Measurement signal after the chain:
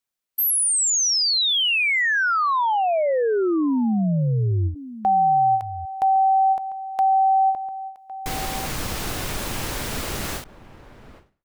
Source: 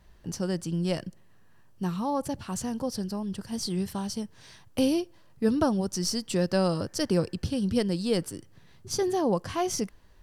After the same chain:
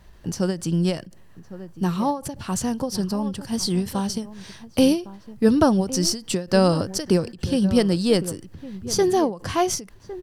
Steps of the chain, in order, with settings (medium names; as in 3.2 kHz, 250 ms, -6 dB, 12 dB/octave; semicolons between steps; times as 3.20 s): echo from a far wall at 190 m, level -15 dB; endings held to a fixed fall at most 160 dB/s; trim +7.5 dB